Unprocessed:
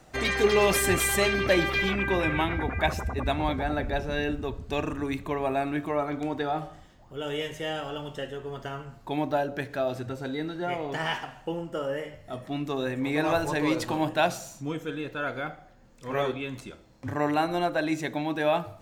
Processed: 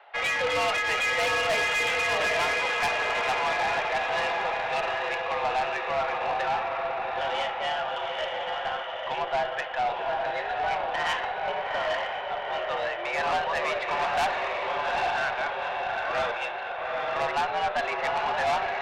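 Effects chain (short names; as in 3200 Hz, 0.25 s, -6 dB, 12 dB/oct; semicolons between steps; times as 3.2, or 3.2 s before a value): diffused feedback echo 0.831 s, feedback 55%, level -3 dB; mistuned SSB +82 Hz 510–3300 Hz; tube stage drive 28 dB, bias 0.25; gain +6 dB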